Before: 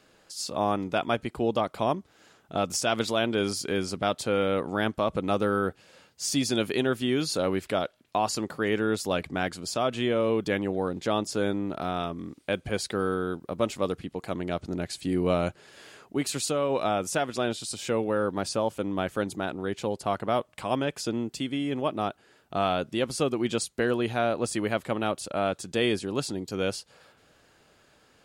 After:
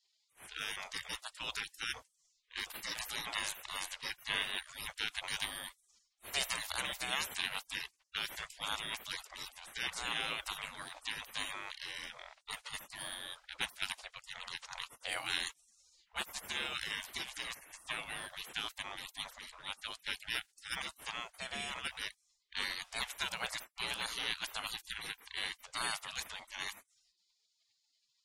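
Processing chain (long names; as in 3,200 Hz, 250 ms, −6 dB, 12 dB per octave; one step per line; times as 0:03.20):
low-pass that shuts in the quiet parts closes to 1,900 Hz, open at −23.5 dBFS
gate on every frequency bin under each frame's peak −30 dB weak
level +11 dB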